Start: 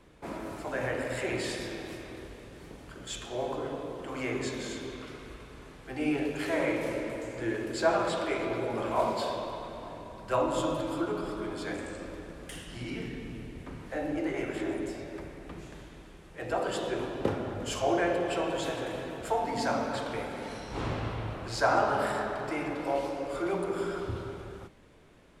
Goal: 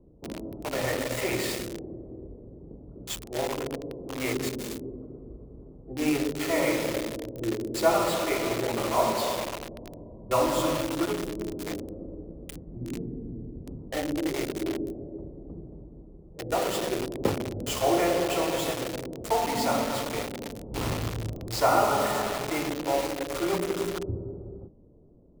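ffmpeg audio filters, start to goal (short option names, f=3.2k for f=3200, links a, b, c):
-filter_complex "[0:a]asuperstop=centerf=1600:order=8:qfactor=5.8,acrossover=split=570[a][b];[b]acrusher=bits=5:mix=0:aa=0.000001[c];[a][c]amix=inputs=2:normalize=0,volume=3.5dB"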